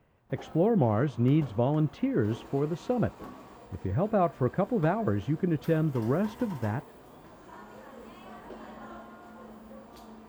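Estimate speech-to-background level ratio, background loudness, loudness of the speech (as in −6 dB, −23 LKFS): 19.5 dB, −48.0 LKFS, −28.5 LKFS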